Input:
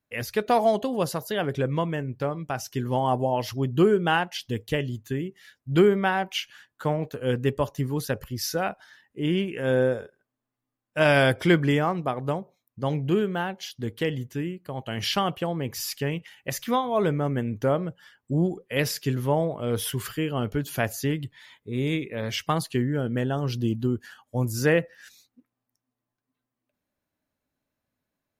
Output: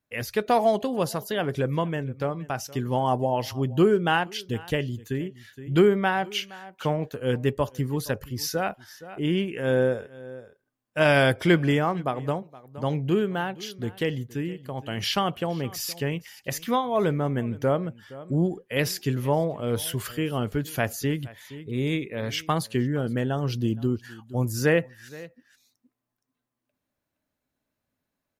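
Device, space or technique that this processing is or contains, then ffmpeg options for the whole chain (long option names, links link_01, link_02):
ducked delay: -filter_complex "[0:a]asplit=3[link_01][link_02][link_03];[link_02]adelay=469,volume=-7.5dB[link_04];[link_03]apad=whole_len=1273117[link_05];[link_04][link_05]sidechaincompress=threshold=-37dB:ratio=8:attack=5.6:release=681[link_06];[link_01][link_06]amix=inputs=2:normalize=0"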